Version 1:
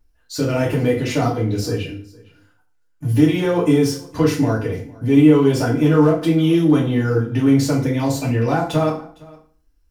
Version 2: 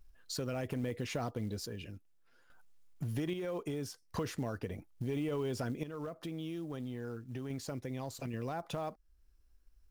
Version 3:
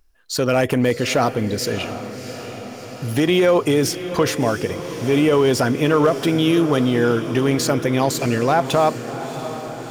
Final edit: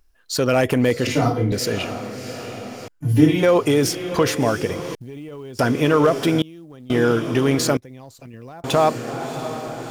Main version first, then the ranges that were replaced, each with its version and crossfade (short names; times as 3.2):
3
1.07–1.52 from 1
2.88–3.43 from 1
4.95–5.59 from 2
6.42–6.9 from 2
7.77–8.64 from 2